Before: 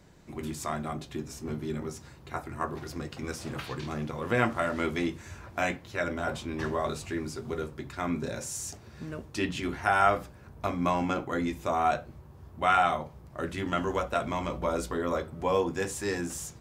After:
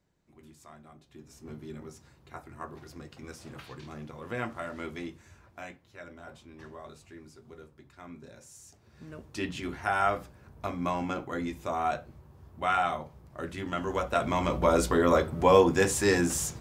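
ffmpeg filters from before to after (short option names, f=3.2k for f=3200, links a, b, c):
-af "volume=14dB,afade=t=in:st=1.05:d=0.45:silence=0.316228,afade=t=out:st=4.95:d=0.79:silence=0.446684,afade=t=in:st=8.71:d=0.67:silence=0.251189,afade=t=in:st=13.8:d=1.06:silence=0.298538"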